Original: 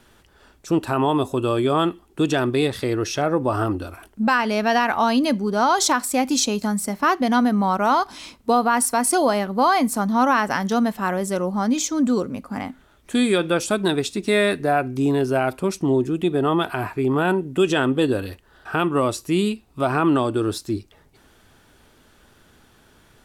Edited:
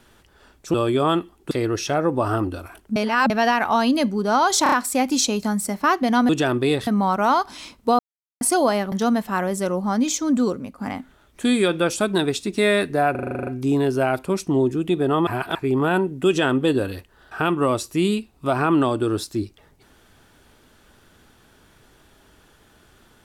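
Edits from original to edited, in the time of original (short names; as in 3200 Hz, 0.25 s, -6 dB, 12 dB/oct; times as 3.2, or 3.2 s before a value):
0.74–1.44 cut
2.21–2.79 move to 7.48
4.24–4.58 reverse
5.91 stutter 0.03 s, 4 plays
8.6–9.02 mute
9.53–10.62 cut
12.15–12.48 fade out, to -6 dB
14.81 stutter 0.04 s, 10 plays
16.61–16.89 reverse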